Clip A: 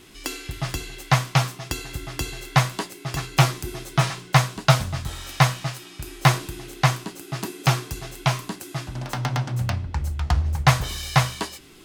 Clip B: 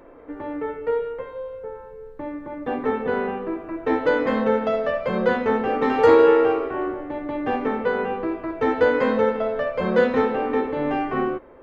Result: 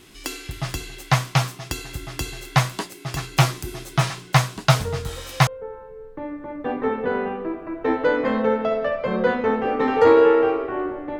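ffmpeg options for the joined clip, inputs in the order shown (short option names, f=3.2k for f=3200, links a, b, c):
-filter_complex "[1:a]asplit=2[a][b];[0:a]apad=whole_dur=11.19,atrim=end=11.19,atrim=end=5.472[c];[b]atrim=start=1.488:end=7.21[d];[a]atrim=start=0.72:end=1.49,asetpts=PTS-STARTPTS,volume=-8dB,afade=t=in:d=0.004:c=hsin,afade=t=out:st=0.766:d=0.004:c=hsin,adelay=4700[e];[c][d]acrossfade=d=0.004:c1=hsin:c2=hsin[f];[f][e]amix=inputs=2:normalize=0"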